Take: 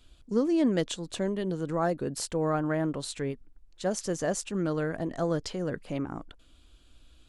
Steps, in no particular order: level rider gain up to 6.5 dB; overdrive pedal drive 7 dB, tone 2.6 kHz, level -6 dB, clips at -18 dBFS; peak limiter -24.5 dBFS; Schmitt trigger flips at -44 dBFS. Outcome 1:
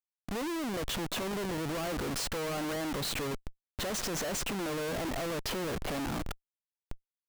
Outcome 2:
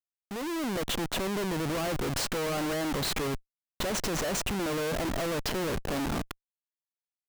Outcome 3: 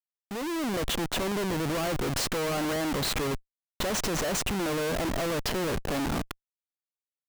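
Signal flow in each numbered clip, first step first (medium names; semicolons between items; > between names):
overdrive pedal > level rider > peak limiter > Schmitt trigger; peak limiter > overdrive pedal > Schmitt trigger > level rider; overdrive pedal > peak limiter > Schmitt trigger > level rider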